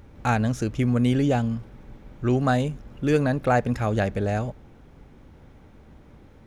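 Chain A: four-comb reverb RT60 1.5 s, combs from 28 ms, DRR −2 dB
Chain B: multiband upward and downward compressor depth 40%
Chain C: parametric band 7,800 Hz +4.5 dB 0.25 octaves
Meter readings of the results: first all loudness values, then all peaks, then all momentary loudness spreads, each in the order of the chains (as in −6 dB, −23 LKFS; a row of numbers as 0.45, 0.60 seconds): −19.5, −24.5, −24.5 LKFS; −3.5, −7.0, −8.5 dBFS; 15, 21, 8 LU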